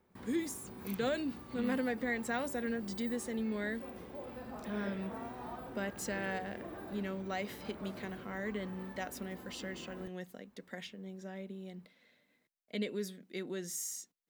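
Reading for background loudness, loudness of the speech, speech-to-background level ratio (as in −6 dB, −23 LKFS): −47.5 LKFS, −39.5 LKFS, 8.0 dB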